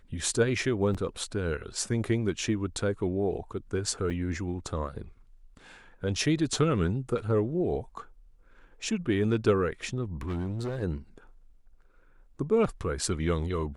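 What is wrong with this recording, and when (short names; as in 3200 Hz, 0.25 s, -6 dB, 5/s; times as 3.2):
0.94–0.95 gap 6.2 ms
4.1–4.11 gap 5.2 ms
10.21–10.83 clipped -28.5 dBFS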